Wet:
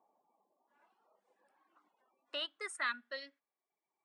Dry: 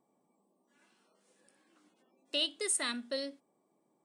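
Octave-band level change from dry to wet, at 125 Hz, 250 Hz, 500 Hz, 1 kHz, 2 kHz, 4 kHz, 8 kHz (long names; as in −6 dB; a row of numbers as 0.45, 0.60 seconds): can't be measured, −16.0 dB, −9.0 dB, +3.0 dB, +2.0 dB, −8.0 dB, −17.5 dB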